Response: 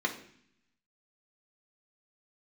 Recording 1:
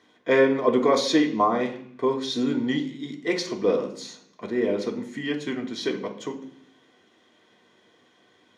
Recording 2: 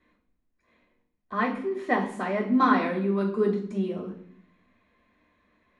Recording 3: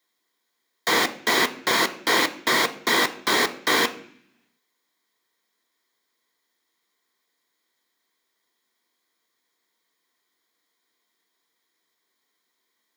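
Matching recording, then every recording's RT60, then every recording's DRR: 1; 0.60, 0.60, 0.60 s; -0.5, -9.0, 6.5 dB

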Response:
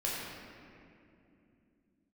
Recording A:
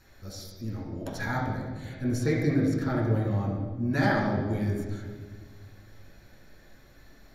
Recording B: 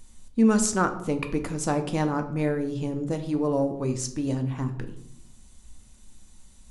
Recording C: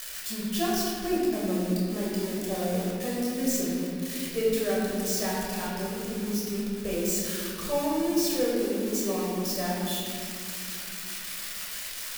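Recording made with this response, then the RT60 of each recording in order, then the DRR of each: C; 1.5, 0.75, 2.7 s; -4.0, 6.5, -6.0 dB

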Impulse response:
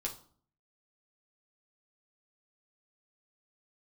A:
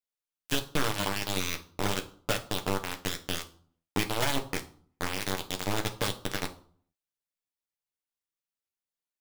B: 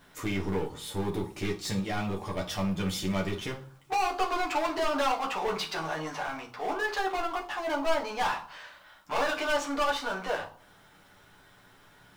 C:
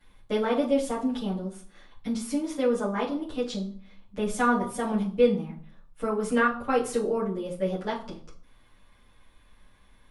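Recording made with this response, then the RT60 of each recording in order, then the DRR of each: B; 0.50, 0.50, 0.50 s; 4.0, -1.0, -8.5 dB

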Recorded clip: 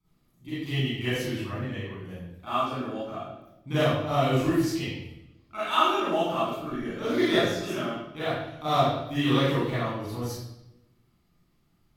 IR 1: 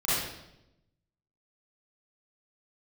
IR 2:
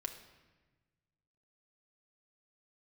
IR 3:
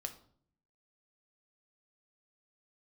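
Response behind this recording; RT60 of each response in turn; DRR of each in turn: 1; 0.85, 1.3, 0.55 s; -13.5, 3.5, 6.0 dB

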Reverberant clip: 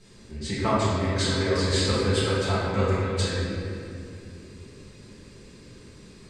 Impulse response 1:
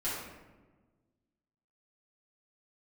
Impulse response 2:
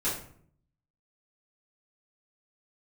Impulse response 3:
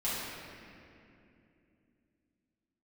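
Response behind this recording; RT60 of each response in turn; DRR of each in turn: 3; 1.3, 0.60, 2.7 s; -11.0, -11.0, -10.5 dB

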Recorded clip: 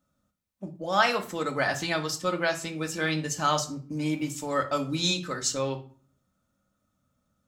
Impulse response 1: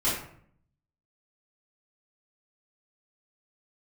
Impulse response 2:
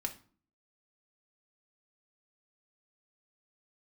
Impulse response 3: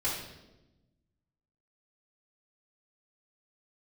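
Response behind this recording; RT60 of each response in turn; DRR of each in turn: 2; 0.60, 0.45, 1.0 s; -11.5, 3.0, -8.5 dB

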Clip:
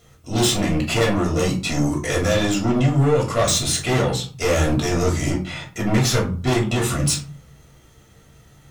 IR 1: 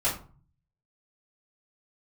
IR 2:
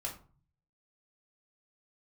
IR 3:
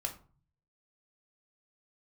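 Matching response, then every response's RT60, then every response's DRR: 2; 0.40, 0.40, 0.40 s; -10.5, -2.0, 2.5 dB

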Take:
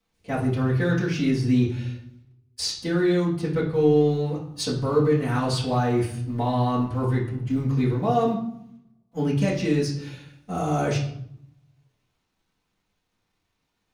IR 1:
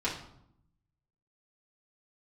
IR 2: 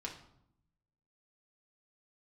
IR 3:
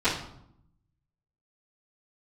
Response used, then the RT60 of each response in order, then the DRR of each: 1; 0.75, 0.75, 0.75 s; -8.0, -2.0, -17.5 dB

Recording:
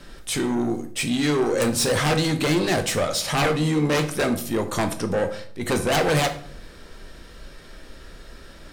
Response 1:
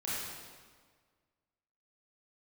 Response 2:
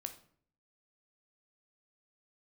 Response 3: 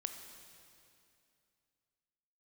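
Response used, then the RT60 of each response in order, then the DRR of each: 2; 1.6, 0.55, 2.6 s; -9.5, 7.0, 5.5 dB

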